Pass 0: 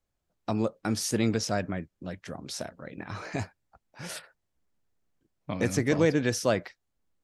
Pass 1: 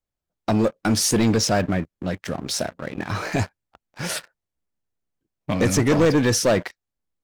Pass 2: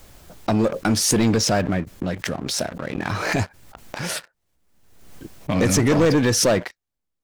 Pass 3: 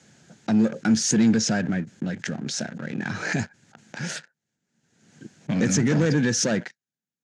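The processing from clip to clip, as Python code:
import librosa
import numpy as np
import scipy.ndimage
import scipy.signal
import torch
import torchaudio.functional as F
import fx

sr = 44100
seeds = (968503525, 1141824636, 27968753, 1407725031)

y1 = fx.leveller(x, sr, passes=3)
y2 = fx.pre_swell(y1, sr, db_per_s=48.0)
y3 = fx.cabinet(y2, sr, low_hz=110.0, low_slope=24, high_hz=7500.0, hz=(150.0, 220.0, 620.0, 1100.0, 1600.0, 6700.0), db=(8, 9, -4, -10, 8, 8))
y3 = y3 * librosa.db_to_amplitude(-6.5)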